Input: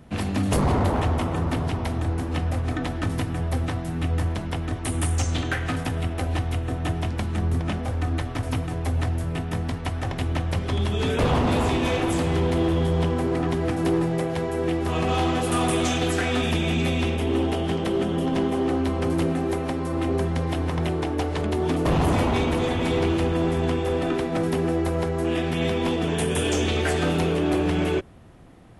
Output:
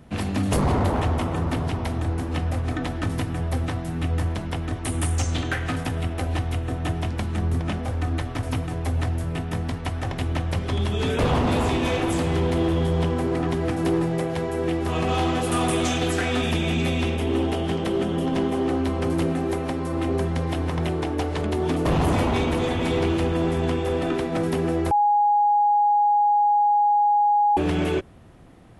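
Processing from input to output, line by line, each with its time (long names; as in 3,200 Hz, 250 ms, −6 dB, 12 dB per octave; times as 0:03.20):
0:24.91–0:27.57: beep over 827 Hz −15.5 dBFS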